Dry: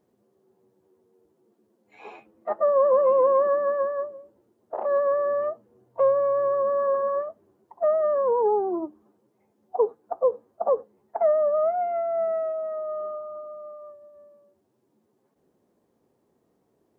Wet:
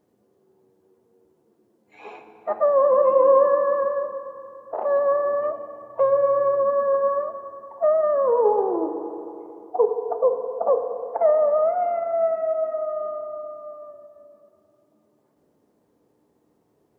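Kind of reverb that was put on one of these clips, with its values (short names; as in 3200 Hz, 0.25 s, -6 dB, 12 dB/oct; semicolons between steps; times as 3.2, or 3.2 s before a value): FDN reverb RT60 3 s, high-frequency decay 0.55×, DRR 5.5 dB; gain +2 dB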